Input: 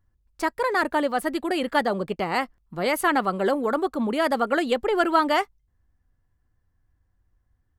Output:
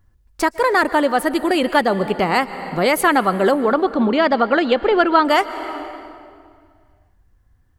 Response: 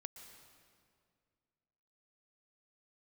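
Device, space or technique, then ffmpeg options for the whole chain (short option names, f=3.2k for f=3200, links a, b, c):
ducked reverb: -filter_complex "[0:a]asettb=1/sr,asplit=3[a][b][c];[a]atrim=end=3.634[d];[b]atrim=start=3.63:end=5.25,asetpts=PTS-STARTPTS,afade=t=in:d=0.004:c=qsin,afade=t=out:st=1.616:d=0.004:c=qsin,lowpass=f=5.1k:w=0.5412,lowpass=f=5.1k:w=1.3066[e];[c]atrim=start=5.246[f];[d][e]acrossfade=d=0.004:c1=hsin:c2=qsin[g];[g][f]acrossfade=d=0.004:c1=qsin:c2=hsin,asplit=3[h][i][j];[1:a]atrim=start_sample=2205[k];[i][k]afir=irnorm=-1:irlink=0[l];[j]apad=whole_len=343204[m];[l][m]sidechaincompress=threshold=-25dB:ratio=8:attack=5.3:release=454,volume=7.5dB[n];[h][n]amix=inputs=2:normalize=0,volume=3.5dB"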